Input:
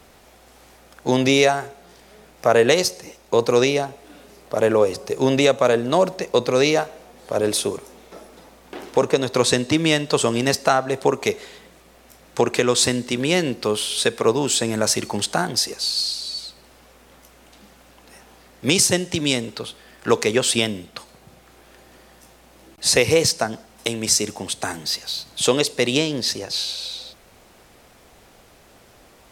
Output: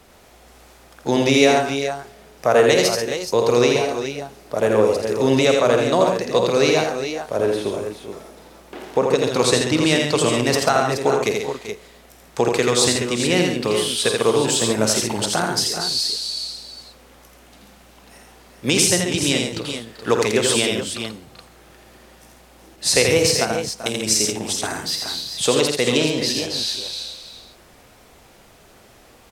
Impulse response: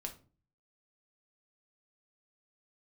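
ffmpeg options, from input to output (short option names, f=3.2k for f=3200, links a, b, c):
-filter_complex "[0:a]asettb=1/sr,asplit=3[a][b][c];[a]atrim=end=7.364[d];[b]atrim=start=7.36:end=9.06,asetpts=PTS-STARTPTS,afade=t=in:d=0.004:c=qsin,afade=t=out:st=1.696:d=0.004:c=qsin,acrossover=split=2800[e][f];[f]acompressor=threshold=-41dB:ratio=4:attack=1:release=60[g];[e][g]amix=inputs=2:normalize=0[h];[c]atrim=start=9.056[i];[d][h]acrossfade=d=0.004:c1=hsin:c2=qsin[j];[j][i]acrossfade=d=0.004:c1=qsin:c2=hsin,aecho=1:1:50|83|137|388|424:0.266|0.631|0.376|0.2|0.355,volume=-1dB"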